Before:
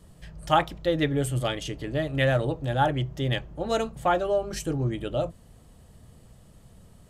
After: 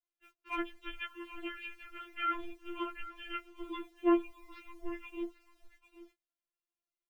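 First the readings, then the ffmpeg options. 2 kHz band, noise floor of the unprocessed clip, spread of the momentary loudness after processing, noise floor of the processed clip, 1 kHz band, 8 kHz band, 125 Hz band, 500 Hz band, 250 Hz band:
-10.5 dB, -54 dBFS, 16 LU, under -85 dBFS, -12.5 dB, under -25 dB, under -40 dB, -14.5 dB, -6.5 dB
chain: -filter_complex "[0:a]lowshelf=f=170:g=-3.5,bandreject=f=50:t=h:w=6,bandreject=f=100:t=h:w=6,bandreject=f=150:t=h:w=6,bandreject=f=200:t=h:w=6,bandreject=f=250:t=h:w=6,bandreject=f=300:t=h:w=6,bandreject=f=350:t=h:w=6,bandreject=f=400:t=h:w=6,bandreject=f=450:t=h:w=6,highpass=f=330:t=q:w=0.5412,highpass=f=330:t=q:w=1.307,lowpass=f=3.2k:t=q:w=0.5176,lowpass=f=3.2k:t=q:w=0.7071,lowpass=f=3.2k:t=q:w=1.932,afreqshift=-360,adynamicequalizer=threshold=0.00794:dfrequency=400:dqfactor=5.6:tfrequency=400:tqfactor=5.6:attack=5:release=100:ratio=0.375:range=3:mode=boostabove:tftype=bell,acrossover=split=330|1200|1700[a][b][c][d];[b]asoftclip=type=tanh:threshold=-22dB[e];[d]acontrast=47[f];[a][e][c][f]amix=inputs=4:normalize=0,acrusher=bits=9:mix=0:aa=0.000001,asoftclip=type=hard:threshold=-12dB,aecho=1:1:790:0.168,agate=range=-29dB:threshold=-51dB:ratio=16:detection=peak,afftfilt=real='re*4*eq(mod(b,16),0)':imag='im*4*eq(mod(b,16),0)':win_size=2048:overlap=0.75,volume=-7dB"

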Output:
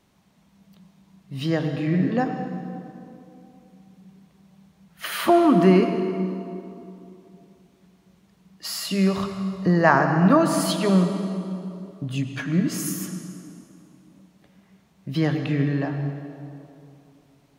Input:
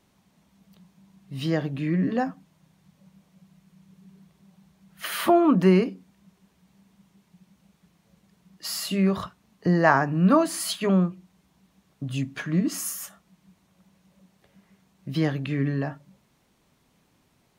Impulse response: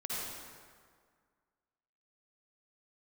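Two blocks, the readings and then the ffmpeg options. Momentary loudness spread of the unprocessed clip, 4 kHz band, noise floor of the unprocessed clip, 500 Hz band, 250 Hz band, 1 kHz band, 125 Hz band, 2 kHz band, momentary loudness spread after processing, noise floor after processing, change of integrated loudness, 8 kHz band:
15 LU, +2.0 dB, -67 dBFS, +3.0 dB, +3.0 dB, +3.0 dB, +3.0 dB, +2.5 dB, 20 LU, -60 dBFS, +2.0 dB, +0.5 dB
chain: -filter_complex "[0:a]asplit=2[a][b];[1:a]atrim=start_sample=2205,asetrate=28665,aresample=44100,lowpass=7.8k[c];[b][c]afir=irnorm=-1:irlink=0,volume=-10.5dB[d];[a][d]amix=inputs=2:normalize=0"

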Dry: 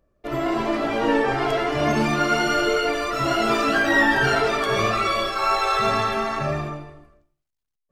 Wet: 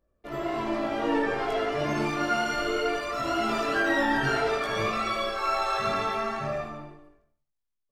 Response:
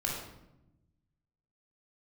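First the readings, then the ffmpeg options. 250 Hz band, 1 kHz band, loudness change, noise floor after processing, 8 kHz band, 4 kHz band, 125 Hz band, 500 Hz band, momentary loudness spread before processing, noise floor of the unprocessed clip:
-6.0 dB, -6.0 dB, -6.0 dB, -80 dBFS, -7.5 dB, -7.0 dB, -8.0 dB, -5.5 dB, 7 LU, -80 dBFS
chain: -filter_complex "[0:a]flanger=delay=18.5:depth=3:speed=0.61,asplit=2[a][b];[b]adelay=77,lowpass=f=2k:p=1,volume=-3dB,asplit=2[c][d];[d]adelay=77,lowpass=f=2k:p=1,volume=0.22,asplit=2[e][f];[f]adelay=77,lowpass=f=2k:p=1,volume=0.22[g];[a][c][e][g]amix=inputs=4:normalize=0,volume=-4.5dB"

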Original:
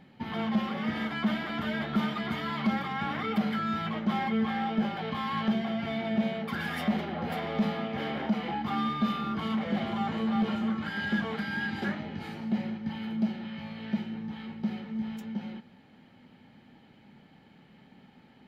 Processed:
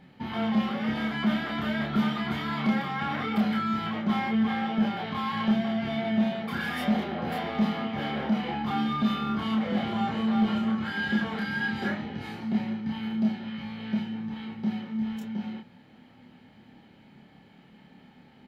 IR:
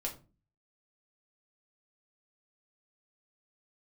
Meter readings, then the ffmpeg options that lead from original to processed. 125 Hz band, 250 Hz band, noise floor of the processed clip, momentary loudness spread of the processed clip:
+2.0 dB, +3.0 dB, -55 dBFS, 6 LU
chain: -filter_complex "[0:a]asplit=2[a][b];[b]adelay=28,volume=-2dB[c];[a][c]amix=inputs=2:normalize=0"

